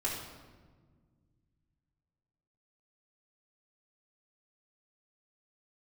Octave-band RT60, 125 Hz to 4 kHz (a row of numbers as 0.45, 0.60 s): 3.3, 2.6, 1.7, 1.3, 1.1, 0.95 s